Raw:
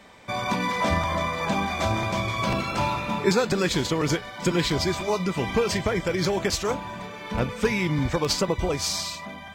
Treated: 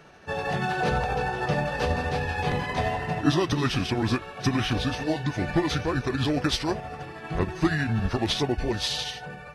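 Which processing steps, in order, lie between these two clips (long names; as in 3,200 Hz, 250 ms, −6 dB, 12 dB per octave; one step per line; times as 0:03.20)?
pitch shift by two crossfaded delay taps −5 semitones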